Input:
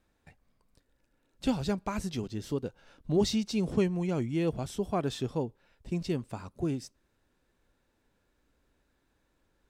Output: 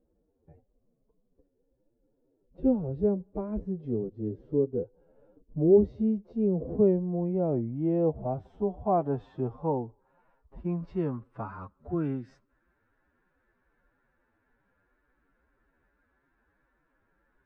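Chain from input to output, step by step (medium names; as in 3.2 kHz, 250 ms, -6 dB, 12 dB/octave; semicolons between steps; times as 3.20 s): low-pass sweep 470 Hz -> 1.6 kHz, 3.26–7.09 s; time stretch by phase-locked vocoder 1.8×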